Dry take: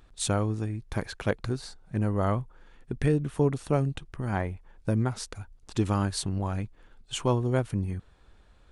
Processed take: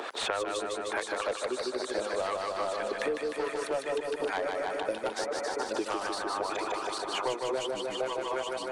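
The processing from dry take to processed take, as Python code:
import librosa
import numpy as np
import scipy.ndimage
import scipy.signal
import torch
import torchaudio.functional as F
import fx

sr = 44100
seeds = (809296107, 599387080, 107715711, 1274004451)

p1 = fx.reverse_delay_fb(x, sr, ms=411, feedback_pct=70, wet_db=-6.0)
p2 = scipy.signal.sosfilt(scipy.signal.butter(4, 420.0, 'highpass', fs=sr, output='sos'), p1)
p3 = fx.dereverb_blind(p2, sr, rt60_s=1.7)
p4 = fx.lowpass(p3, sr, hz=3200.0, slope=6)
p5 = fx.rider(p4, sr, range_db=10, speed_s=0.5)
p6 = p4 + F.gain(torch.from_numpy(p5), -2.0).numpy()
p7 = 10.0 ** (-21.5 / 20.0) * np.tanh(p6 / 10.0 ** (-21.5 / 20.0))
p8 = fx.harmonic_tremolo(p7, sr, hz=4.5, depth_pct=70, crossover_hz=830.0)
p9 = p8 + fx.echo_feedback(p8, sr, ms=152, feedback_pct=60, wet_db=-4, dry=0)
p10 = fx.band_squash(p9, sr, depth_pct=100)
y = F.gain(torch.from_numpy(p10), 1.0).numpy()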